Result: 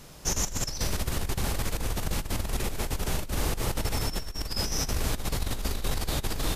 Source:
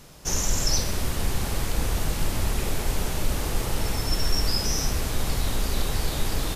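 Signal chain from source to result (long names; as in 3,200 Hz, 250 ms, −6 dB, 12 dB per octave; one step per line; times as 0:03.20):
compressor whose output falls as the input rises −25 dBFS, ratio −0.5
level −2.5 dB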